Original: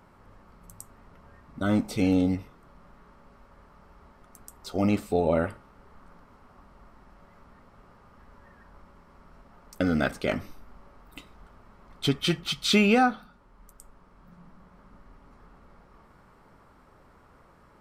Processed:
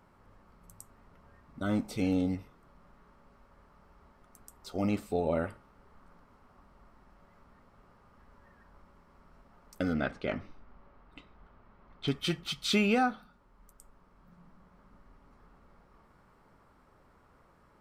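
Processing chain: 9.93–12.08 s: low-pass 3.5 kHz 12 dB/octave; trim -6 dB

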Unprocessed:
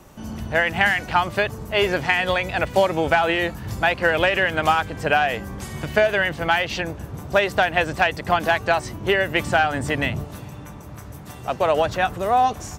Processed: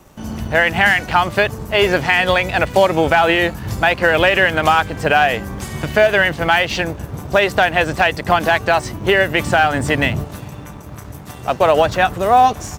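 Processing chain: companding laws mixed up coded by A; loudness maximiser +8 dB; trim -1 dB

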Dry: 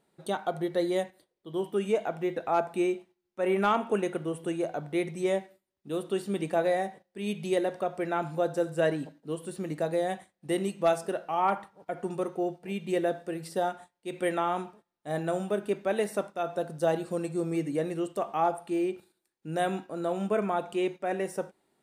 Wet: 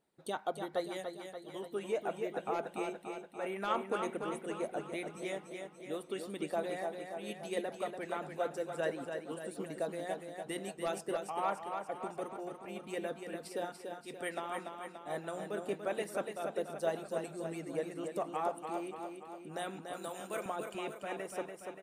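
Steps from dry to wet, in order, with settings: 19.93–20.46 s: RIAA curve recording; feedback delay 289 ms, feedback 59%, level -6 dB; harmonic-percussive split harmonic -11 dB; trim -4 dB

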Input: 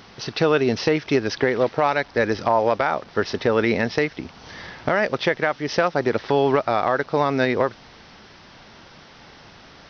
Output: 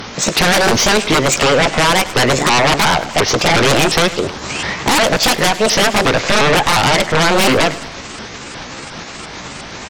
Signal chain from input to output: sawtooth pitch modulation +8 st, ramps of 356 ms; sine folder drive 16 dB, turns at -6.5 dBFS; feedback delay 103 ms, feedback 50%, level -16 dB; trim -2 dB

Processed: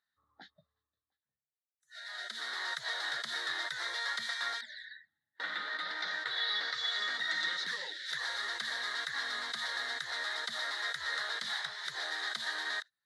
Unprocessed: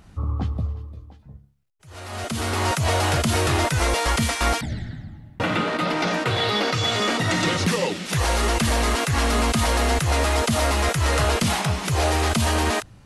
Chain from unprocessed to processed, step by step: spectral noise reduction 24 dB; compression 1.5:1, threshold -37 dBFS, peak gain reduction 7 dB; two resonant band-passes 2.6 kHz, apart 1.1 oct; trim +4 dB

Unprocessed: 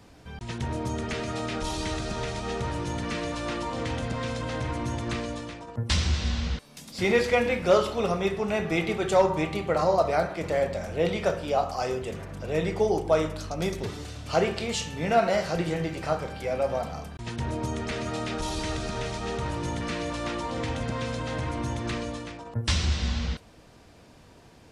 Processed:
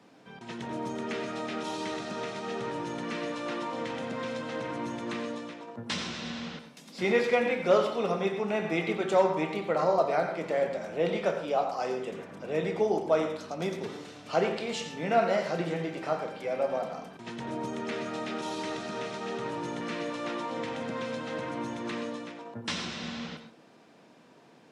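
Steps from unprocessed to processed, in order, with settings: high-pass 170 Hz 24 dB/octave; treble shelf 6.6 kHz -11.5 dB; band-stop 4.6 kHz, Q 29; on a send: reverberation RT60 0.30 s, pre-delay 85 ms, DRR 8.5 dB; on the sum: trim -2.5 dB

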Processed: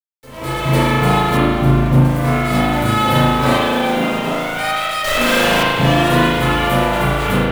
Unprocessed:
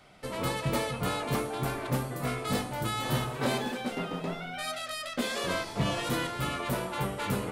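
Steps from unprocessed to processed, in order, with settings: 5.04–5.63 s: one-bit comparator; bit crusher 7-bit; 1.37–2.05 s: tilt shelf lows +6 dB, about 650 Hz; level rider gain up to 16 dB; spring tank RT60 1.6 s, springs 37 ms, chirp 70 ms, DRR -9 dB; trim -8 dB

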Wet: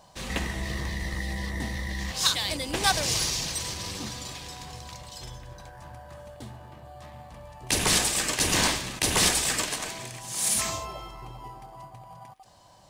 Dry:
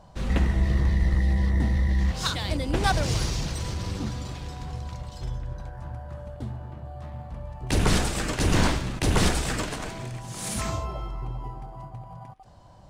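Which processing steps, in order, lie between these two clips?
tilt EQ +3 dB/octave; band-stop 1.4 kHz, Q 9.4

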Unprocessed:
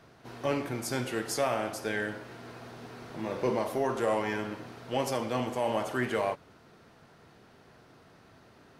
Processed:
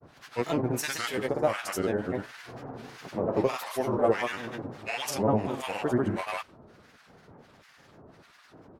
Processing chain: harmonic tremolo 1.5 Hz, depth 100%, crossover 1.1 kHz; granulator, pitch spread up and down by 3 st; trim +8.5 dB

